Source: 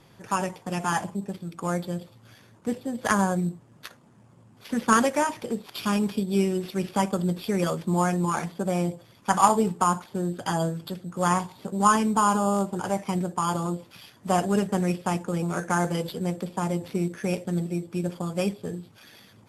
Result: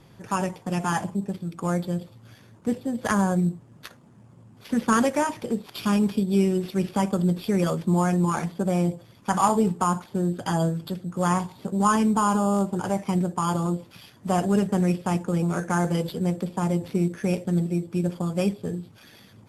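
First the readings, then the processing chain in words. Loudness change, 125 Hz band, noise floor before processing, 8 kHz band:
+1.5 dB, +3.5 dB, -55 dBFS, -2.0 dB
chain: bass shelf 350 Hz +6 dB; in parallel at -1.5 dB: peak limiter -13.5 dBFS, peak gain reduction 11 dB; on the sum: trim -6 dB

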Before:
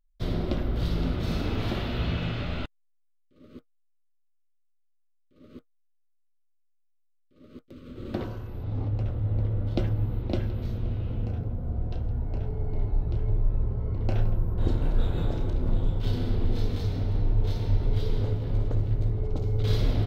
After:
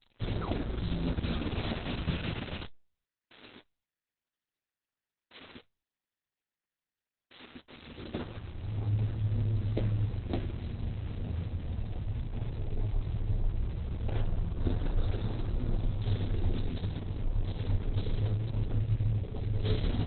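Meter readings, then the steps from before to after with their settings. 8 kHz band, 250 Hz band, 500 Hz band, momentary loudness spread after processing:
no reading, -4.5 dB, -6.0 dB, 11 LU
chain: zero-crossing glitches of -23 dBFS; flange 0.32 Hz, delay 8.2 ms, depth 5.4 ms, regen +53%; painted sound fall, 0.41–0.62 s, 240–1600 Hz -38 dBFS; Opus 6 kbps 48 kHz

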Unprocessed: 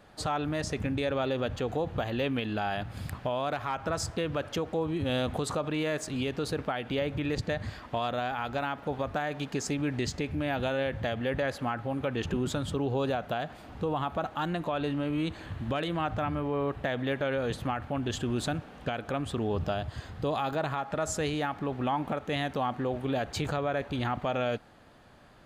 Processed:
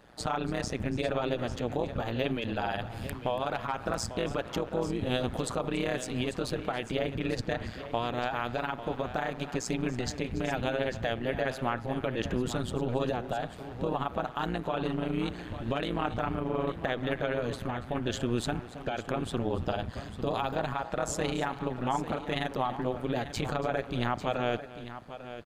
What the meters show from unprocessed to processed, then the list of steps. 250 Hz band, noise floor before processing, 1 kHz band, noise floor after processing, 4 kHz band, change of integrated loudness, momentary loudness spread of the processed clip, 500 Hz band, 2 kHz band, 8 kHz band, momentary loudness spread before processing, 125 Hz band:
-1.0 dB, -49 dBFS, -0.5 dB, -44 dBFS, -0.5 dB, -0.5 dB, 4 LU, -0.5 dB, -0.5 dB, -0.5 dB, 3 LU, -1.0 dB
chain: AM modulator 120 Hz, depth 85%; multi-tap echo 283/846 ms -17/-12.5 dB; trim +3 dB

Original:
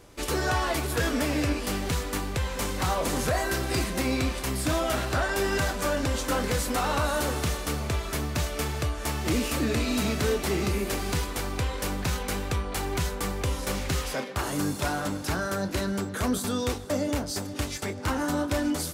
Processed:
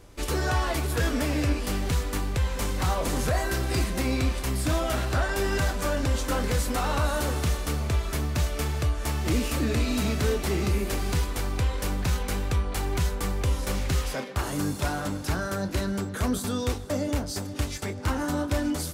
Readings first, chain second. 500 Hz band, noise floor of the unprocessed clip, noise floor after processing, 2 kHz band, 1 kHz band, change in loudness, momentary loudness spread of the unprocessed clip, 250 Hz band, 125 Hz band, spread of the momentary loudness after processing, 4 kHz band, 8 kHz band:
-1.0 dB, -36 dBFS, -35 dBFS, -1.5 dB, -1.5 dB, +0.5 dB, 4 LU, -0.5 dB, +3.5 dB, 4 LU, -1.5 dB, -1.5 dB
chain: bass shelf 98 Hz +9 dB; trim -1.5 dB

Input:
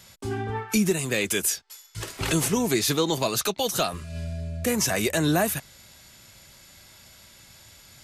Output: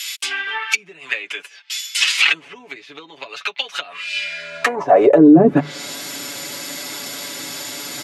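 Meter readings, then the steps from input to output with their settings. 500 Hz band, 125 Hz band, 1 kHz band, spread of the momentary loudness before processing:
+9.5 dB, 0.0 dB, +8.5 dB, 11 LU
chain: hum notches 50/100/150 Hz; low-pass that closes with the level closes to 330 Hz, closed at -20 dBFS; comb 7 ms, depth 75%; high-pass sweep 2.6 kHz -> 290 Hz, 4.17–5.40 s; loudness maximiser +20.5 dB; trim -1 dB

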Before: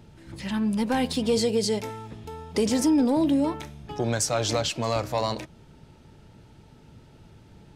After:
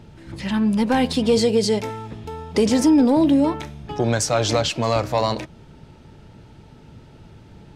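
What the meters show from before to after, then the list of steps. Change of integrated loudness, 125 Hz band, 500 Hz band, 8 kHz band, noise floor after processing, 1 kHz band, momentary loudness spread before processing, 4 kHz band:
+5.5 dB, +6.0 dB, +6.0 dB, +2.5 dB, -47 dBFS, +6.0 dB, 16 LU, +4.5 dB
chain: treble shelf 7.8 kHz -8.5 dB; trim +6 dB

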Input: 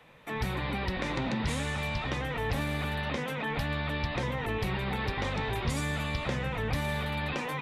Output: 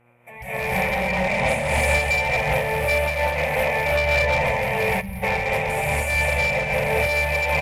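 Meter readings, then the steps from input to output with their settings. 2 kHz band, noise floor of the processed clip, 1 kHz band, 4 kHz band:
+13.5 dB, -39 dBFS, +11.0 dB, +6.0 dB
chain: FFT filter 210 Hz 0 dB, 300 Hz -22 dB, 550 Hz +14 dB, 920 Hz +7 dB, 1.3 kHz -8 dB, 2.3 kHz +14 dB, 3.9 kHz -13 dB, 10 kHz +11 dB; on a send: delay 202 ms -6.5 dB; on the sum: compression, threshold -25 dBFS, peak gain reduction 6 dB; gated-style reverb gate 350 ms rising, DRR -6 dB; level rider gain up to 11.5 dB; mains buzz 120 Hz, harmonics 13, -45 dBFS -4 dB/octave; spectral noise reduction 8 dB; one-sided clip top -11 dBFS, bottom -8.5 dBFS; time-frequency box 5.01–5.23 s, 220–9100 Hz -17 dB; random flutter of the level, depth 60%; trim -3.5 dB

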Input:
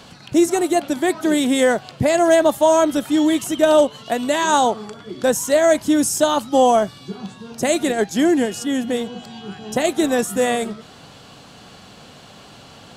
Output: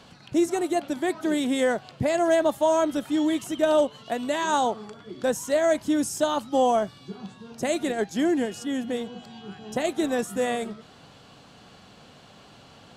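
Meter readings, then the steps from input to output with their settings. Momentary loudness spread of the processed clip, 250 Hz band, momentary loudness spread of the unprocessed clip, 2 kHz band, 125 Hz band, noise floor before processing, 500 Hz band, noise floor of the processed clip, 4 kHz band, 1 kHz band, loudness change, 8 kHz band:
15 LU, -7.0 dB, 15 LU, -7.5 dB, -7.0 dB, -44 dBFS, -7.0 dB, -51 dBFS, -8.5 dB, -7.0 dB, -7.0 dB, -10.5 dB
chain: treble shelf 6.4 kHz -6 dB; trim -7 dB

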